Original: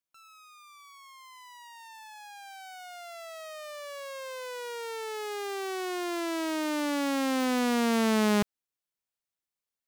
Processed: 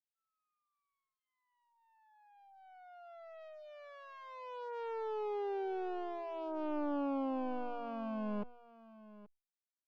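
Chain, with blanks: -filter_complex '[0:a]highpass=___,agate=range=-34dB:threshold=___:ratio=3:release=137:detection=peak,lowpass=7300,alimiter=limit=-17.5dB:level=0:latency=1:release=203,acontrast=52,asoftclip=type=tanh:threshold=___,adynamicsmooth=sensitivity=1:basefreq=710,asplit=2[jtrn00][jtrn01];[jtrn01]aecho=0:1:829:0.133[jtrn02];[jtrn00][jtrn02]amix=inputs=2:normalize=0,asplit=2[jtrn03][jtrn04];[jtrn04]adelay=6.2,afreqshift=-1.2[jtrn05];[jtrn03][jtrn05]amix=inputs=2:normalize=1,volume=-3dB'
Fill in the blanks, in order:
340, -40dB, -24.5dB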